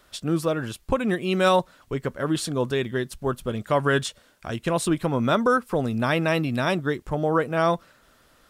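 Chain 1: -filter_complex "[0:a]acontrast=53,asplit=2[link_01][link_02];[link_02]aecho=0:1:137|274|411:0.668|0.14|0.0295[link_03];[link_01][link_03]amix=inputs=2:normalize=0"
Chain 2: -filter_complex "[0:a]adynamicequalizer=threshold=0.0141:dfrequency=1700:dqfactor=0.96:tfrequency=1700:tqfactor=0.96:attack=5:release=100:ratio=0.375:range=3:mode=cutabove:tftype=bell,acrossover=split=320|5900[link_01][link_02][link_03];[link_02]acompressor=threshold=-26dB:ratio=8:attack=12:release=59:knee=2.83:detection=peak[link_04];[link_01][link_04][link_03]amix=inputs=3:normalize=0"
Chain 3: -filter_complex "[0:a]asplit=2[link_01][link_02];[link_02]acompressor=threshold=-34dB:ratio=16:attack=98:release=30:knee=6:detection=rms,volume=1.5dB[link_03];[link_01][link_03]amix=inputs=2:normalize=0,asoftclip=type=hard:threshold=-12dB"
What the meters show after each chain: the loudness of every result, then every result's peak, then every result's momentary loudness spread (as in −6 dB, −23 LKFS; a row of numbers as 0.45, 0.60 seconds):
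−17.5, −27.0, −22.0 LKFS; −1.5, −11.0, −12.0 dBFS; 8, 7, 7 LU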